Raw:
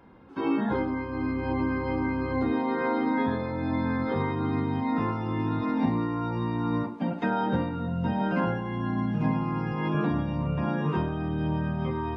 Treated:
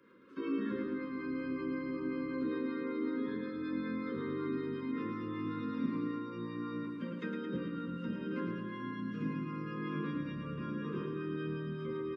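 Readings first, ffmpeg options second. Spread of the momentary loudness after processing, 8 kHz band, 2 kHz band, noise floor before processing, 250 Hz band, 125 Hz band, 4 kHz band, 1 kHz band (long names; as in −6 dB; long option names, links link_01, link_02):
4 LU, can't be measured, −10.0 dB, −35 dBFS, −8.5 dB, −14.0 dB, −9.0 dB, −15.5 dB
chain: -filter_complex "[0:a]highpass=270,acrossover=split=370[link_01][link_02];[link_02]acompressor=threshold=-39dB:ratio=3[link_03];[link_01][link_03]amix=inputs=2:normalize=0,acrossover=split=440[link_04][link_05];[link_04]aeval=exprs='val(0)*(1-0.5/2+0.5/2*cos(2*PI*5.3*n/s))':channel_layout=same[link_06];[link_05]aeval=exprs='val(0)*(1-0.5/2-0.5/2*cos(2*PI*5.3*n/s))':channel_layout=same[link_07];[link_06][link_07]amix=inputs=2:normalize=0,asuperstop=centerf=760:order=8:qfactor=1.5,aecho=1:1:110|220|330|440|550|660|770|880:0.531|0.319|0.191|0.115|0.0688|0.0413|0.0248|0.0149,volume=-2.5dB"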